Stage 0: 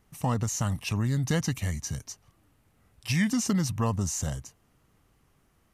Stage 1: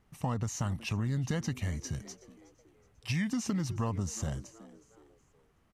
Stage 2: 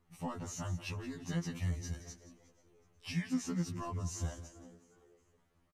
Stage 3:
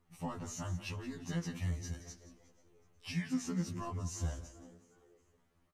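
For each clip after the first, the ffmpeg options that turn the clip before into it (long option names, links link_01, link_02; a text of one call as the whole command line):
ffmpeg -i in.wav -filter_complex "[0:a]highshelf=frequency=6900:gain=-11.5,asplit=4[link_01][link_02][link_03][link_04];[link_02]adelay=370,afreqshift=110,volume=-21dB[link_05];[link_03]adelay=740,afreqshift=220,volume=-29dB[link_06];[link_04]adelay=1110,afreqshift=330,volume=-36.9dB[link_07];[link_01][link_05][link_06][link_07]amix=inputs=4:normalize=0,acompressor=threshold=-26dB:ratio=6,volume=-2dB" out.wav
ffmpeg -i in.wav -af "aecho=1:1:175|350|525:0.2|0.0599|0.018,afftfilt=real='re*2*eq(mod(b,4),0)':imag='im*2*eq(mod(b,4),0)':win_size=2048:overlap=0.75,volume=-2.5dB" out.wav
ffmpeg -i in.wav -af "flanger=delay=7.4:depth=9.2:regen=84:speed=1:shape=sinusoidal,volume=4dB" out.wav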